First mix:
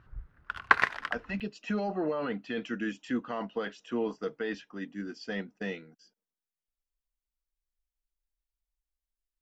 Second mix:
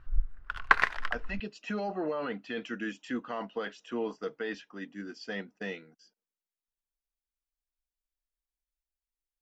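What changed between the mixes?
background: remove high-pass 110 Hz 12 dB/octave; master: add bass shelf 260 Hz -6.5 dB

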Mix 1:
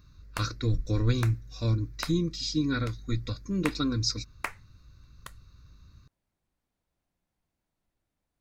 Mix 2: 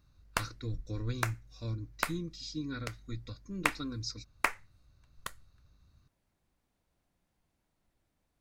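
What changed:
speech -10.5 dB; background +4.5 dB

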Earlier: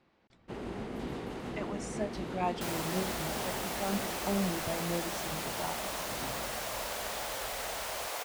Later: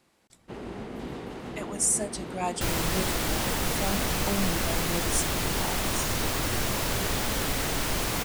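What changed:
speech: remove distance through air 230 m; second sound: remove ladder high-pass 490 Hz, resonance 40%; reverb: on

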